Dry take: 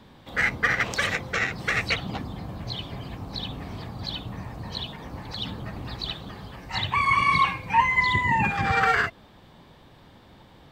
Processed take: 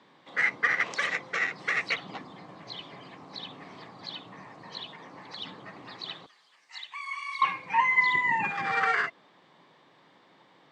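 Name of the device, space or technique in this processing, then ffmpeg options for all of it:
television speaker: -filter_complex "[0:a]highpass=f=180:w=0.5412,highpass=f=180:w=1.3066,equalizer=f=220:t=q:w=4:g=-8,equalizer=f=1.1k:t=q:w=4:g=5,equalizer=f=2k:t=q:w=4:g=6,lowpass=f=7.7k:w=0.5412,lowpass=f=7.7k:w=1.3066,asettb=1/sr,asplit=3[a][b][c];[a]atrim=end=6.264[d];[b]atrim=start=6.26:end=7.42,asetpts=PTS-STARTPTS,afade=t=in:d=0.004:c=qsin,afade=t=out:st=1.156:d=0.004:c=qsin,aderivative[e];[c]atrim=start=7.416[f];[d][e]acrossfade=d=0.004:c1=hsin:c2=qsin[g];[g][f]acrossfade=d=0.004:c1=qsin:c2=hsin,volume=-6.5dB"

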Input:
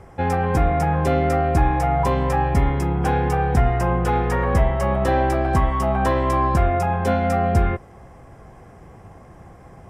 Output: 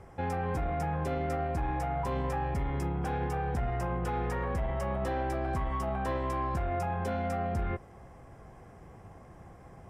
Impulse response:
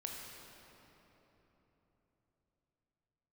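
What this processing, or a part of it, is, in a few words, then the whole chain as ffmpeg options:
soft clipper into limiter: -af "asoftclip=type=tanh:threshold=-11.5dB,alimiter=limit=-18.5dB:level=0:latency=1:release=42,volume=-7dB"

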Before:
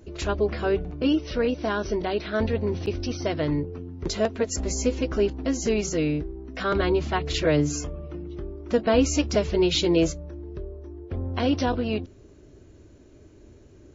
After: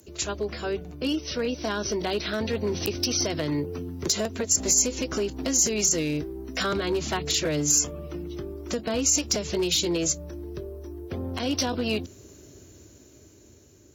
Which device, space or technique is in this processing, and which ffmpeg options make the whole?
FM broadcast chain: -filter_complex "[0:a]highpass=f=63:w=0.5412,highpass=f=63:w=1.3066,dynaudnorm=f=830:g=5:m=11.5dB,acrossover=split=130|320[a][b][c];[a]acompressor=threshold=-34dB:ratio=4[d];[b]acompressor=threshold=-25dB:ratio=4[e];[c]acompressor=threshold=-22dB:ratio=4[f];[d][e][f]amix=inputs=3:normalize=0,aemphasis=mode=production:type=50fm,alimiter=limit=-12.5dB:level=0:latency=1:release=142,asoftclip=type=hard:threshold=-15.5dB,lowpass=f=15k:w=0.5412,lowpass=f=15k:w=1.3066,aemphasis=mode=production:type=50fm,volume=-4.5dB"

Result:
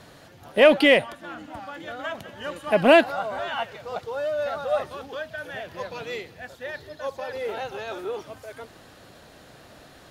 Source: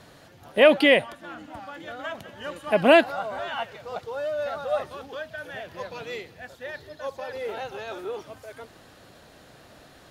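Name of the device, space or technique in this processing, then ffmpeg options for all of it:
parallel distortion: -filter_complex "[0:a]asplit=2[a][b];[b]asoftclip=type=hard:threshold=-20dB,volume=-12dB[c];[a][c]amix=inputs=2:normalize=0"

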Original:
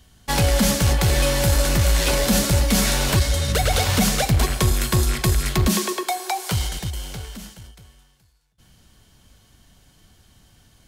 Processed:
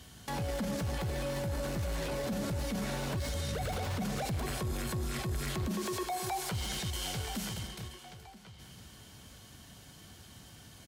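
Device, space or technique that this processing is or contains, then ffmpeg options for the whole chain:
podcast mastering chain: -filter_complex "[0:a]asettb=1/sr,asplit=3[a][b][c];[a]atrim=end=6.414[d];[b]atrim=start=6.41:end=7.17,asetpts=PTS-STARTPTS,afade=t=in:d=0.004:c=qsin,afade=t=out:st=0.756:d=0.004:c=qsin,equalizer=f=3.2k:w=0.43:g=4[e];[c]atrim=start=7.166[f];[d][e]acrossfade=d=0.004:c1=hsin:c2=qsin[g];[g][f]acrossfade=d=0.004:c1=qsin:c2=hsin,highpass=81,asplit=2[h][i];[i]adelay=978,lowpass=f=4.5k:p=1,volume=-20.5dB,asplit=2[j][k];[k]adelay=978,lowpass=f=4.5k:p=1,volume=0.26[l];[h][j][l]amix=inputs=3:normalize=0,deesser=0.6,acompressor=threshold=-38dB:ratio=2,alimiter=level_in=6.5dB:limit=-24dB:level=0:latency=1:release=12,volume=-6.5dB,volume=3.5dB" -ar 44100 -c:a libmp3lame -b:a 96k

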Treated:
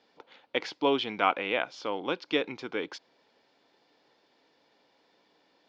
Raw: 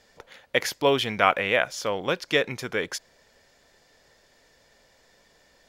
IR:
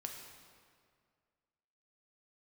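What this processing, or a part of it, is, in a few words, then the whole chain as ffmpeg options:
kitchen radio: -af "highpass=220,equalizer=f=300:t=q:w=4:g=8,equalizer=f=600:t=q:w=4:g=-5,equalizer=f=860:t=q:w=4:g=4,equalizer=f=1.8k:t=q:w=4:g=-8,lowpass=f=4.5k:w=0.5412,lowpass=f=4.5k:w=1.3066,volume=-4.5dB"

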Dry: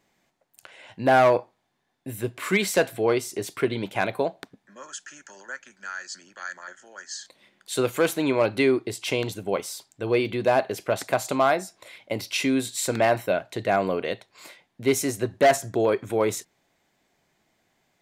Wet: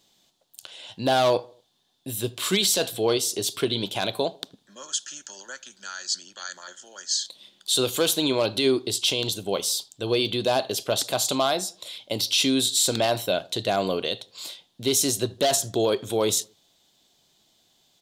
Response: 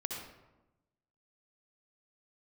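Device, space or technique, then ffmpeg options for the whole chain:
over-bright horn tweeter: -filter_complex "[0:a]asettb=1/sr,asplit=3[a][b][c];[a]atrim=end=5.934[d];[b]atrim=start=5.93:end=6.51,asetpts=PTS-STARTPTS,afade=t=in:d=0.004:c=qsin,afade=t=out:st=0.576:d=0.004:c=qsin,lowpass=12k[e];[c]atrim=start=6.506[f];[d][e]acrossfade=d=0.004:c1=hsin:c2=qsin[g];[g][f]acrossfade=d=0.004:c1=qsin:c2=hsin,highshelf=f=2.7k:t=q:w=3:g=8.5,alimiter=limit=-11.5dB:level=0:latency=1:release=32,asplit=2[h][i];[i]adelay=78,lowpass=f=1.6k:p=1,volume=-22.5dB,asplit=2[j][k];[k]adelay=78,lowpass=f=1.6k:p=1,volume=0.46,asplit=2[l][m];[m]adelay=78,lowpass=f=1.6k:p=1,volume=0.46[n];[h][j][l][n]amix=inputs=4:normalize=0"

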